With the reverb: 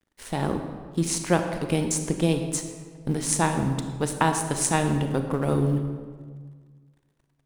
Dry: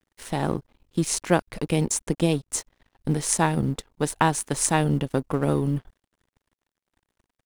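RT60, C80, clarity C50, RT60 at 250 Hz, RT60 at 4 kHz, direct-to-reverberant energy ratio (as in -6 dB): 1.7 s, 8.5 dB, 7.0 dB, 1.9 s, 1.1 s, 6.0 dB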